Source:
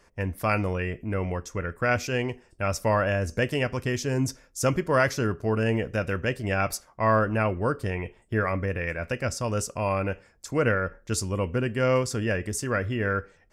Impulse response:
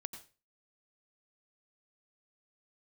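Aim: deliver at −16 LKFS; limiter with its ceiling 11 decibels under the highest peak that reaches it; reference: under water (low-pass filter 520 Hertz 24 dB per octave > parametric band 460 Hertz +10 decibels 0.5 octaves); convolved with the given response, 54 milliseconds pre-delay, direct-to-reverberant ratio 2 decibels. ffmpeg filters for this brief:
-filter_complex "[0:a]alimiter=limit=-20.5dB:level=0:latency=1,asplit=2[link_01][link_02];[1:a]atrim=start_sample=2205,adelay=54[link_03];[link_02][link_03]afir=irnorm=-1:irlink=0,volume=0.5dB[link_04];[link_01][link_04]amix=inputs=2:normalize=0,lowpass=frequency=520:width=0.5412,lowpass=frequency=520:width=1.3066,equalizer=frequency=460:width_type=o:width=0.5:gain=10,volume=11.5dB"

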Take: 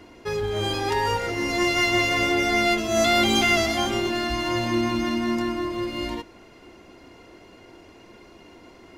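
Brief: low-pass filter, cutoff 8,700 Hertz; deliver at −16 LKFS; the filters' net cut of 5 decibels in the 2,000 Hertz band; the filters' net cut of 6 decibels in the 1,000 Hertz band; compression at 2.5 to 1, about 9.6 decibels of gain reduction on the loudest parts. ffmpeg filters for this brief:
ffmpeg -i in.wav -af "lowpass=8700,equalizer=frequency=1000:width_type=o:gain=-8.5,equalizer=frequency=2000:width_type=o:gain=-4,acompressor=threshold=-34dB:ratio=2.5,volume=17.5dB" out.wav

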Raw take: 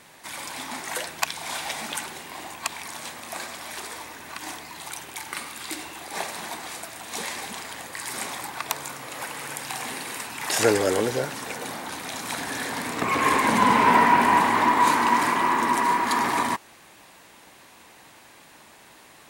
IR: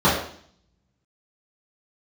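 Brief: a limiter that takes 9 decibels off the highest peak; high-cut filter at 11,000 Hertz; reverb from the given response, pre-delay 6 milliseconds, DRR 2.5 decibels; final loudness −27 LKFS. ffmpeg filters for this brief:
-filter_complex "[0:a]lowpass=11000,alimiter=limit=-14dB:level=0:latency=1,asplit=2[link_01][link_02];[1:a]atrim=start_sample=2205,adelay=6[link_03];[link_02][link_03]afir=irnorm=-1:irlink=0,volume=-24.5dB[link_04];[link_01][link_04]amix=inputs=2:normalize=0,volume=-1.5dB"

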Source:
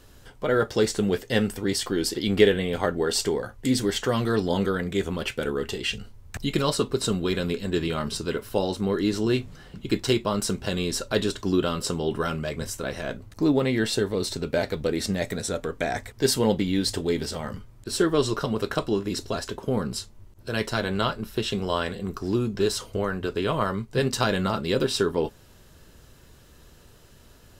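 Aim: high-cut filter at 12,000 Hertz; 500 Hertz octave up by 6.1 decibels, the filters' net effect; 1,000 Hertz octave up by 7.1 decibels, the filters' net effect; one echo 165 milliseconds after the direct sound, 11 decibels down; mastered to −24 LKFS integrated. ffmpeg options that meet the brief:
ffmpeg -i in.wav -af "lowpass=12000,equalizer=frequency=500:width_type=o:gain=6,equalizer=frequency=1000:width_type=o:gain=7.5,aecho=1:1:165:0.282,volume=-2.5dB" out.wav

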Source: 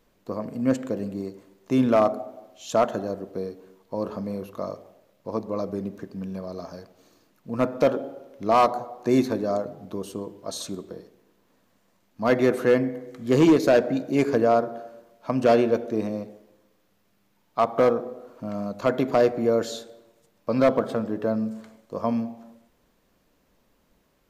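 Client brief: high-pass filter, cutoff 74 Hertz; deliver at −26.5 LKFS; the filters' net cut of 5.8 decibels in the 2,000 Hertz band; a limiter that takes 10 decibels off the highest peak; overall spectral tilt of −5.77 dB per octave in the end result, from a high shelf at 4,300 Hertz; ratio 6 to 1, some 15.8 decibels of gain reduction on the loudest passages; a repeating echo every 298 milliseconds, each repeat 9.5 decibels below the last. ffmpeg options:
ffmpeg -i in.wav -af "highpass=74,equalizer=frequency=2000:width_type=o:gain=-8.5,highshelf=frequency=4300:gain=3,acompressor=threshold=-32dB:ratio=6,alimiter=level_in=4dB:limit=-24dB:level=0:latency=1,volume=-4dB,aecho=1:1:298|596|894|1192:0.335|0.111|0.0365|0.012,volume=12dB" out.wav

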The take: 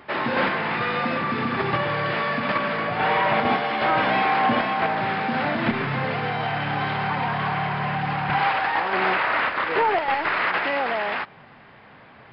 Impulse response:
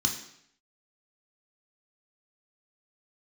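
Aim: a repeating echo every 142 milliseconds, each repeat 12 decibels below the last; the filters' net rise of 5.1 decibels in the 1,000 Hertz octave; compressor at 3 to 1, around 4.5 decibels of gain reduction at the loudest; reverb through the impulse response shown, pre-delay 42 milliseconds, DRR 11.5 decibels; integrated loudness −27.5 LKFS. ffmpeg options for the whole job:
-filter_complex "[0:a]equalizer=frequency=1000:width_type=o:gain=6.5,acompressor=threshold=-19dB:ratio=3,aecho=1:1:142|284|426:0.251|0.0628|0.0157,asplit=2[link_01][link_02];[1:a]atrim=start_sample=2205,adelay=42[link_03];[link_02][link_03]afir=irnorm=-1:irlink=0,volume=-18.5dB[link_04];[link_01][link_04]amix=inputs=2:normalize=0,volume=-6dB"

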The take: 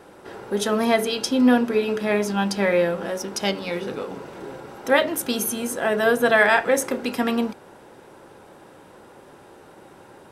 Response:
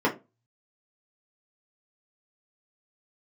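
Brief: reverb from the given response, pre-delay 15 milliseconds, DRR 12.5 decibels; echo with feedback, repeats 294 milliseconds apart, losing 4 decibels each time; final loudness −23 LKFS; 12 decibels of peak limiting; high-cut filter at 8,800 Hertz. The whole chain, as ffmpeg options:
-filter_complex "[0:a]lowpass=8800,alimiter=limit=-15.5dB:level=0:latency=1,aecho=1:1:294|588|882|1176|1470|1764|2058|2352|2646:0.631|0.398|0.25|0.158|0.0994|0.0626|0.0394|0.0249|0.0157,asplit=2[link_01][link_02];[1:a]atrim=start_sample=2205,adelay=15[link_03];[link_02][link_03]afir=irnorm=-1:irlink=0,volume=-27dB[link_04];[link_01][link_04]amix=inputs=2:normalize=0,volume=1dB"

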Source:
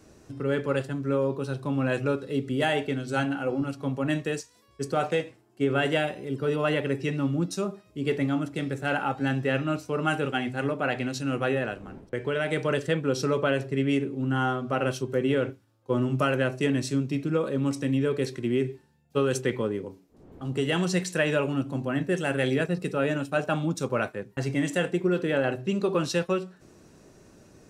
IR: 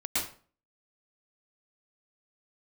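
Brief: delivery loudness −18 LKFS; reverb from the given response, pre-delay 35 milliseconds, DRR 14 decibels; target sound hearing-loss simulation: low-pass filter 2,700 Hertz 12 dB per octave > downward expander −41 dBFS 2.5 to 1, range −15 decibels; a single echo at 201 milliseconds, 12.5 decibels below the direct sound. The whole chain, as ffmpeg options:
-filter_complex "[0:a]aecho=1:1:201:0.237,asplit=2[link_01][link_02];[1:a]atrim=start_sample=2205,adelay=35[link_03];[link_02][link_03]afir=irnorm=-1:irlink=0,volume=-21.5dB[link_04];[link_01][link_04]amix=inputs=2:normalize=0,lowpass=2700,agate=range=-15dB:threshold=-41dB:ratio=2.5,volume=9.5dB"

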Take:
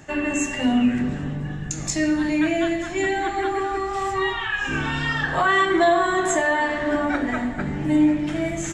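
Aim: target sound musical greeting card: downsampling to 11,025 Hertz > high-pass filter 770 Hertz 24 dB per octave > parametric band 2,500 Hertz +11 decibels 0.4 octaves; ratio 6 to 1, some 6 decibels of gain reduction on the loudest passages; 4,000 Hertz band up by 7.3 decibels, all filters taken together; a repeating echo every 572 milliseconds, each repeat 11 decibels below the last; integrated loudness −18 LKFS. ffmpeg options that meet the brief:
ffmpeg -i in.wav -af "equalizer=frequency=4000:width_type=o:gain=5.5,acompressor=threshold=-20dB:ratio=6,aecho=1:1:572|1144|1716:0.282|0.0789|0.0221,aresample=11025,aresample=44100,highpass=frequency=770:width=0.5412,highpass=frequency=770:width=1.3066,equalizer=frequency=2500:width_type=o:width=0.4:gain=11,volume=6.5dB" out.wav

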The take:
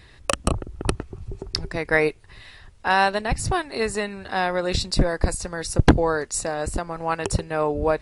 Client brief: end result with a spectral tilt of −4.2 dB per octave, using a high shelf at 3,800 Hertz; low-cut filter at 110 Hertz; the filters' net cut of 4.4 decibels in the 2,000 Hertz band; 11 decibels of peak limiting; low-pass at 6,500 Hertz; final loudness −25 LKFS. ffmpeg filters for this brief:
ffmpeg -i in.wav -af "highpass=110,lowpass=6500,equalizer=frequency=2000:width_type=o:gain=-6.5,highshelf=frequency=3800:gain=4,volume=2.5dB,alimiter=limit=-11dB:level=0:latency=1" out.wav

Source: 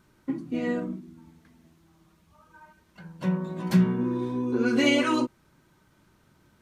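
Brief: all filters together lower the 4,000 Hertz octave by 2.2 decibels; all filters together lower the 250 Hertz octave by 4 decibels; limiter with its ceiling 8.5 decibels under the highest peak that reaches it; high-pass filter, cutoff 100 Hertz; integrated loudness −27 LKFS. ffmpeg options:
ffmpeg -i in.wav -af "highpass=100,equalizer=frequency=250:width_type=o:gain=-5,equalizer=frequency=4000:width_type=o:gain=-3.5,volume=5dB,alimiter=limit=-15.5dB:level=0:latency=1" out.wav

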